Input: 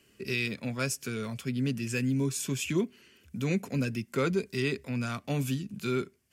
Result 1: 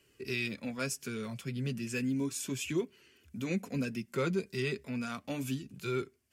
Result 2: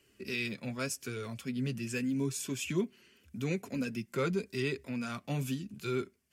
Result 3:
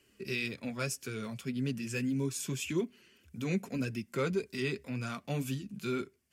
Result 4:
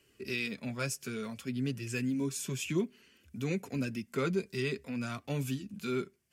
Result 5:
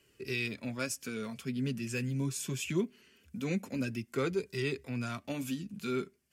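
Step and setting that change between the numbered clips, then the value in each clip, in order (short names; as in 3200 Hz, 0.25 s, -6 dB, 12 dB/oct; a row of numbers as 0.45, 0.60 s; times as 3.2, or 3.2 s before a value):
flange, rate: 0.34, 0.85, 1.8, 0.56, 0.22 Hz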